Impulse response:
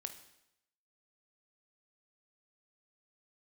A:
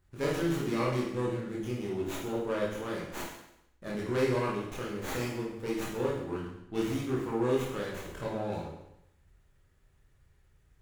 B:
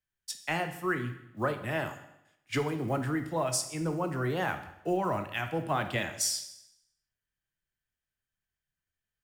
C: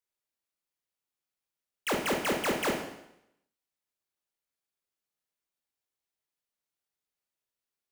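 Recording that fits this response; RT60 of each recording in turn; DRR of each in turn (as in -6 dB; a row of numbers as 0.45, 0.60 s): B; 0.80, 0.80, 0.80 s; -5.5, 7.0, 1.0 dB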